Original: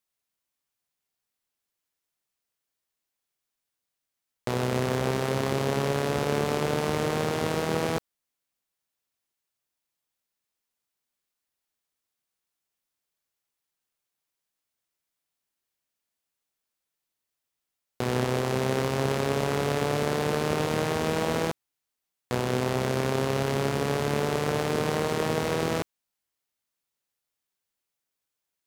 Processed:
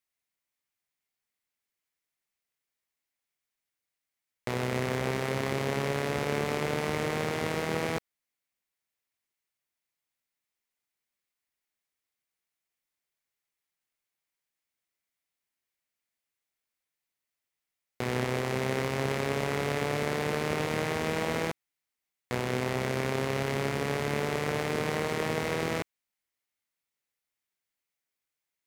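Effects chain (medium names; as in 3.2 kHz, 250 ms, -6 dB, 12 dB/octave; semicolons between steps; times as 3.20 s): peaking EQ 2.1 kHz +7 dB 0.54 oct; trim -4 dB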